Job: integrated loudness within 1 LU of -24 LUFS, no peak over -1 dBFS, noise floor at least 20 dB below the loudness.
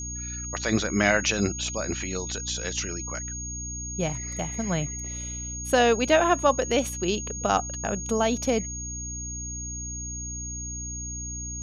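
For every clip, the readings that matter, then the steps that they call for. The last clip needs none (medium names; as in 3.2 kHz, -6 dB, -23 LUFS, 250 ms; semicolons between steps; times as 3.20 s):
hum 60 Hz; highest harmonic 300 Hz; hum level -35 dBFS; steady tone 6.6 kHz; tone level -34 dBFS; loudness -27.0 LUFS; peak level -6.5 dBFS; loudness target -24.0 LUFS
-> hum notches 60/120/180/240/300 Hz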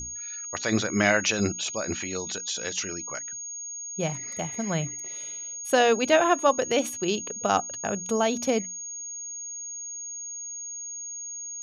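hum not found; steady tone 6.6 kHz; tone level -34 dBFS
-> band-stop 6.6 kHz, Q 30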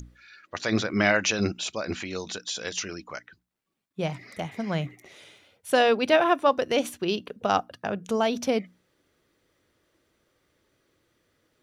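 steady tone not found; loudness -26.5 LUFS; peak level -6.0 dBFS; loudness target -24.0 LUFS
-> trim +2.5 dB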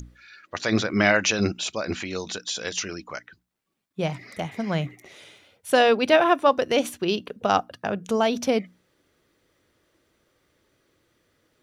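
loudness -24.0 LUFS; peak level -3.5 dBFS; noise floor -71 dBFS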